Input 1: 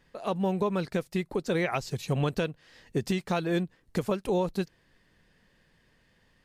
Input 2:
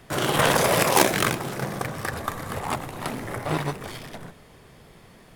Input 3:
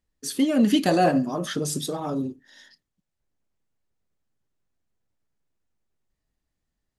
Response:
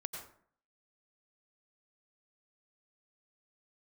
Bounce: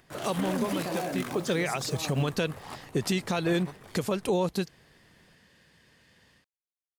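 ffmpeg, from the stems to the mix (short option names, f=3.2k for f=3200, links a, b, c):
-filter_complex "[0:a]highpass=f=59:w=0.5412,highpass=f=59:w=1.3066,equalizer=f=7.5k:w=0.32:g=5.5,dynaudnorm=f=120:g=3:m=6.5dB,volume=-3dB[a];[1:a]acompressor=mode=upward:threshold=-46dB:ratio=2.5,volume=-14.5dB[b];[2:a]acrusher=bits=6:mix=0:aa=0.000001,volume=-9.5dB,asplit=2[c][d];[d]apad=whole_len=284104[e];[a][e]sidechaincompress=threshold=-32dB:ratio=8:attack=16:release=720[f];[b][c]amix=inputs=2:normalize=0,alimiter=limit=-23.5dB:level=0:latency=1:release=46,volume=0dB[g];[f][g]amix=inputs=2:normalize=0,alimiter=limit=-17.5dB:level=0:latency=1:release=66"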